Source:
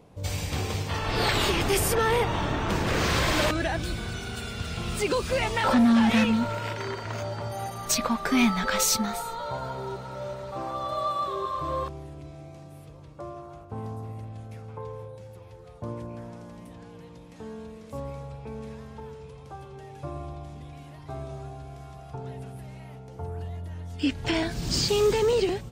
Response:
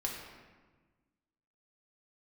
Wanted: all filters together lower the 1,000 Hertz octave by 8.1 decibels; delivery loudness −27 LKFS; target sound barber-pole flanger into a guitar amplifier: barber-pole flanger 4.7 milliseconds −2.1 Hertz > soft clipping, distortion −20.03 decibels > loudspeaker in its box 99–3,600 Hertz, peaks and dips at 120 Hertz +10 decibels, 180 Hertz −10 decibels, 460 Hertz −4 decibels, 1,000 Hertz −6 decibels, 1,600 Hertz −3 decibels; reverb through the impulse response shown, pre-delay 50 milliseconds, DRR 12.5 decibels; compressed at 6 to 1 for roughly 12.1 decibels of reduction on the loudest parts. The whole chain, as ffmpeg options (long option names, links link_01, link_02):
-filter_complex "[0:a]equalizer=frequency=1000:width_type=o:gain=-7,acompressor=threshold=-31dB:ratio=6,asplit=2[link_01][link_02];[1:a]atrim=start_sample=2205,adelay=50[link_03];[link_02][link_03]afir=irnorm=-1:irlink=0,volume=-15dB[link_04];[link_01][link_04]amix=inputs=2:normalize=0,asplit=2[link_05][link_06];[link_06]adelay=4.7,afreqshift=-2.1[link_07];[link_05][link_07]amix=inputs=2:normalize=1,asoftclip=threshold=-29dB,highpass=99,equalizer=frequency=120:width_type=q:width=4:gain=10,equalizer=frequency=180:width_type=q:width=4:gain=-10,equalizer=frequency=460:width_type=q:width=4:gain=-4,equalizer=frequency=1000:width_type=q:width=4:gain=-6,equalizer=frequency=1600:width_type=q:width=4:gain=-3,lowpass=frequency=3600:width=0.5412,lowpass=frequency=3600:width=1.3066,volume=15dB"